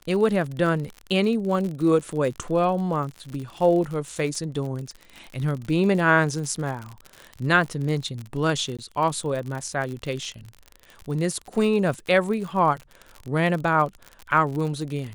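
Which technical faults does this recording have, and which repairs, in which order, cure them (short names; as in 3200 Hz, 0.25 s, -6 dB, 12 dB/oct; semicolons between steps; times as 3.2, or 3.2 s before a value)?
crackle 54/s -30 dBFS
8.77–8.79 gap 16 ms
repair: de-click; interpolate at 8.77, 16 ms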